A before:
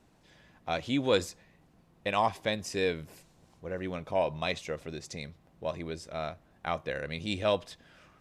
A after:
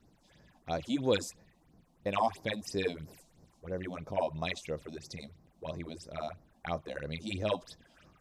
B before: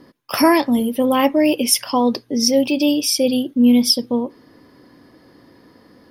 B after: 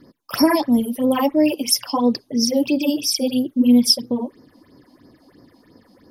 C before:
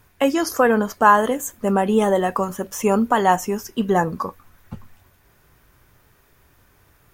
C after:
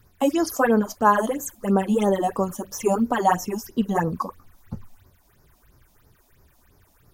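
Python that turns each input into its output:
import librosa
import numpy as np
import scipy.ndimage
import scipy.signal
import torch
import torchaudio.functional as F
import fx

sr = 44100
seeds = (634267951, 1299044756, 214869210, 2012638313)

y = fx.phaser_stages(x, sr, stages=6, low_hz=100.0, high_hz=3100.0, hz=3.0, feedback_pct=40)
y = y * librosa.db_to_amplitude(-1.0)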